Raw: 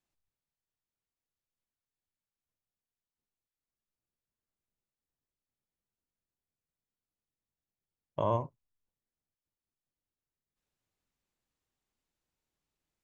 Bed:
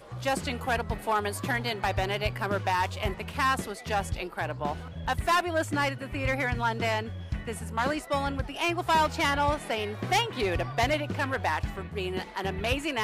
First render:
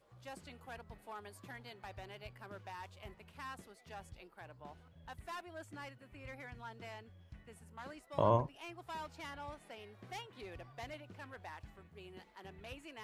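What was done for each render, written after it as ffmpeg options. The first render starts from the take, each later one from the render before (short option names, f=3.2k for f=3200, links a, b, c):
-filter_complex "[1:a]volume=-21.5dB[a];[0:a][a]amix=inputs=2:normalize=0"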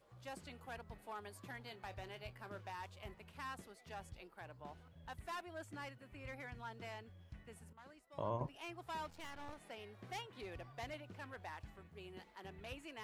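-filter_complex "[0:a]asettb=1/sr,asplit=3[a][b][c];[a]atrim=end=1.624[d];[b]atrim=start=1.62:end=2.7,asetpts=PTS-STARTPTS,afade=t=in:d=0.004:c=qsin,afade=t=out:st=1.076:d=0.004:c=qsin,asplit=2[e][f];[f]adelay=27,volume=-13dB[g];[e][g]amix=inputs=2:normalize=0,atrim=end_sample=47628[h];[c]atrim=start=2.696[i];[d][h]acrossfade=d=0.004:c1=hsin:c2=qsin[j];[j][i]acrossfade=d=0.004:c1=qsin:c2=hsin,asettb=1/sr,asplit=3[k][l][m];[k]atrim=end=9.104[n];[l]atrim=start=9.1:end=9.56,asetpts=PTS-STARTPTS,afade=t=in:d=0.004:c=qsin,afade=t=out:st=0.456:d=0.004:c=qsin,aeval=exprs='max(val(0),0)':c=same[o];[m]atrim=start=9.556[p];[n][o]acrossfade=d=0.004:c1=hsin:c2=qsin[q];[q][p]acrossfade=d=0.004:c1=qsin:c2=hsin,asplit=3[r][s][t];[r]atrim=end=7.732[u];[s]atrim=start=7.728:end=8.412,asetpts=PTS-STARTPTS,volume=-10.5dB[v];[t]atrim=start=8.408[w];[u][v]acrossfade=d=0.004:c1=hsin:c2=hsin[x];[x][w]acrossfade=d=0.004:c1=hsin:c2=hsin"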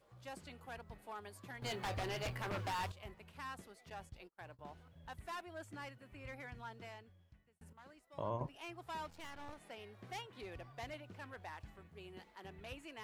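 -filter_complex "[0:a]asettb=1/sr,asplit=3[a][b][c];[a]atrim=end=1.624[d];[b]atrim=start=1.62:end=2.92,asetpts=PTS-STARTPTS,afade=t=in:d=0.004:c=qsin,afade=t=out:st=1.296:d=0.004:c=qsin,aeval=exprs='0.0168*sin(PI/2*3.16*val(0)/0.0168)':c=same[e];[c]atrim=start=2.916[f];[d][e]acrossfade=d=0.004:c1=hsin:c2=qsin[g];[g][f]acrossfade=d=0.004:c1=qsin:c2=hsin,asettb=1/sr,asplit=3[h][i][j];[h]atrim=end=3.904[k];[i]atrim=start=3.9:end=4.59,asetpts=PTS-STARTPTS,afade=t=in:d=0.004:c=qsin,afade=t=out:st=0.686:d=0.004:c=qsin,agate=range=-29dB:threshold=-58dB:ratio=16:release=100:detection=peak[l];[j]atrim=start=4.586[m];[k][l]acrossfade=d=0.004:c1=hsin:c2=qsin[n];[n][m]acrossfade=d=0.004:c1=qsin:c2=hsin,asplit=2[o][p];[o]atrim=end=7.61,asetpts=PTS-STARTPTS,afade=t=out:st=6.64:d=0.97[q];[p]atrim=start=7.61,asetpts=PTS-STARTPTS,afade=t=in:d=0.004:c=hsin[r];[q][r]concat=n=2:v=0:a=1"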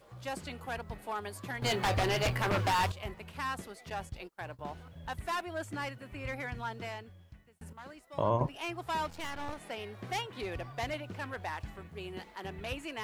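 -af "volume=11dB"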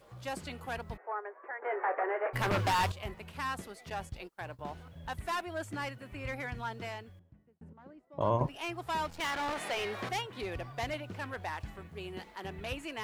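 -filter_complex "[0:a]asplit=3[a][b][c];[a]afade=t=out:st=0.96:d=0.02[d];[b]asuperpass=centerf=870:order=12:qfactor=0.55,afade=t=in:st=0.96:d=0.02,afade=t=out:st=2.33:d=0.02[e];[c]afade=t=in:st=2.33:d=0.02[f];[d][e][f]amix=inputs=3:normalize=0,asettb=1/sr,asplit=3[g][h][i];[g]atrim=end=7.194[j];[h]atrim=start=7.19:end=8.21,asetpts=PTS-STARTPTS,afade=t=in:d=0.004:c=qsin,afade=t=out:st=1.016:d=0.004:c=qsin,bandpass=f=260:t=q:w=0.73[k];[i]atrim=start=8.206[l];[j][k]acrossfade=d=0.004:c1=hsin:c2=qsin[m];[m][l]acrossfade=d=0.004:c1=qsin:c2=hsin,asettb=1/sr,asplit=3[n][o][p];[n]atrim=end=9.204[q];[o]atrim=start=9.2:end=10.09,asetpts=PTS-STARTPTS,afade=t=in:d=0.004:c=qsin,afade=t=out:st=0.886:d=0.004:c=qsin,asplit=2[r][s];[s]highpass=f=720:p=1,volume=22dB,asoftclip=type=tanh:threshold=-26dB[t];[r][t]amix=inputs=2:normalize=0,lowpass=f=5.1k:p=1,volume=-6dB[u];[p]atrim=start=10.086[v];[q][u]acrossfade=d=0.004:c1=hsin:c2=qsin[w];[w][v]acrossfade=d=0.004:c1=qsin:c2=hsin"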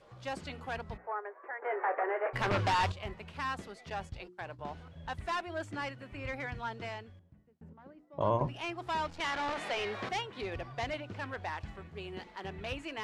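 -af "lowpass=6.2k,bandreject=f=60:t=h:w=6,bandreject=f=120:t=h:w=6,bandreject=f=180:t=h:w=6,bandreject=f=240:t=h:w=6,bandreject=f=300:t=h:w=6,bandreject=f=360:t=h:w=6"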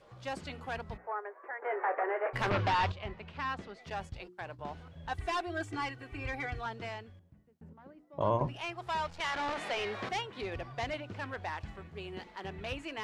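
-filter_complex "[0:a]asettb=1/sr,asplit=3[a][b][c];[a]atrim=end=2.504[d];[b]atrim=start=2.5:end=3.81,asetpts=PTS-STARTPTS,afade=t=in:d=0.004:c=qsin,afade=t=out:st=1.306:d=0.004:c=qsin,lowpass=4.5k[e];[c]atrim=start=3.806[f];[d][e]acrossfade=d=0.004:c1=hsin:c2=qsin[g];[g][f]acrossfade=d=0.004:c1=qsin:c2=hsin,asettb=1/sr,asplit=3[h][i][j];[h]atrim=end=5.114[k];[i]atrim=start=5.11:end=6.66,asetpts=PTS-STARTPTS,afade=t=in:d=0.004:c=qsin,afade=t=out:st=1.546:d=0.004:c=qsin,aecho=1:1:2.6:0.86,atrim=end_sample=68355[l];[j]atrim=start=6.656[m];[k][l]acrossfade=d=0.004:c1=hsin:c2=qsin[n];[n][m]acrossfade=d=0.004:c1=qsin:c2=hsin,asettb=1/sr,asplit=3[o][p][q];[o]atrim=end=8.574[r];[p]atrim=start=8.57:end=9.35,asetpts=PTS-STARTPTS,afade=t=in:d=0.004:c=qsin,afade=t=out:st=0.776:d=0.004:c=qsin,equalizer=f=290:w=3.7:g=-13[s];[q]atrim=start=9.346[t];[r][s]acrossfade=d=0.004:c1=hsin:c2=qsin[u];[u][t]acrossfade=d=0.004:c1=qsin:c2=hsin"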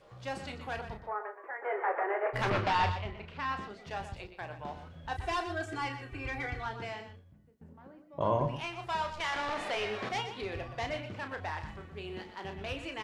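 -filter_complex "[0:a]asplit=2[a][b];[b]adelay=33,volume=-8dB[c];[a][c]amix=inputs=2:normalize=0,aecho=1:1:122:0.299"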